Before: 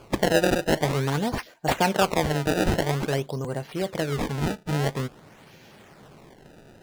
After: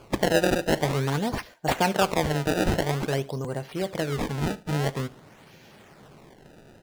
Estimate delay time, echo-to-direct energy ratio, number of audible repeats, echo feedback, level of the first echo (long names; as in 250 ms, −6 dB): 73 ms, −20.5 dB, 2, 31%, −21.0 dB